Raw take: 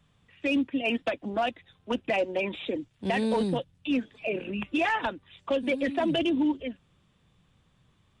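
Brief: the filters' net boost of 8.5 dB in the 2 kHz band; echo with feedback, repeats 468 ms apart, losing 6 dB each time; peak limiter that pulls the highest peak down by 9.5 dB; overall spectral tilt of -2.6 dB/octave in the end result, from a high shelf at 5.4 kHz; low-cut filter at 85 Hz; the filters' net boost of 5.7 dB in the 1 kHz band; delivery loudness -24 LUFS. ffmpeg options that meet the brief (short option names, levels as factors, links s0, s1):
-af "highpass=85,equalizer=f=1000:t=o:g=6,equalizer=f=2000:t=o:g=8.5,highshelf=f=5400:g=5,alimiter=limit=0.112:level=0:latency=1,aecho=1:1:468|936|1404|1872|2340|2808:0.501|0.251|0.125|0.0626|0.0313|0.0157,volume=1.58"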